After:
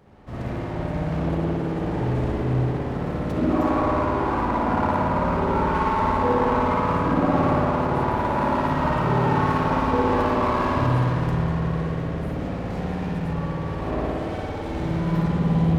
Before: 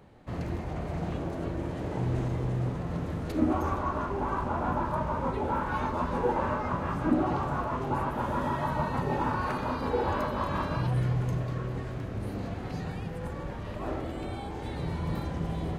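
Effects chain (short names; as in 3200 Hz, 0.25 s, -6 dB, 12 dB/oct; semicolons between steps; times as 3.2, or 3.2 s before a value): spring tank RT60 2.9 s, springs 55 ms, chirp 80 ms, DRR -7.5 dB; running maximum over 5 samples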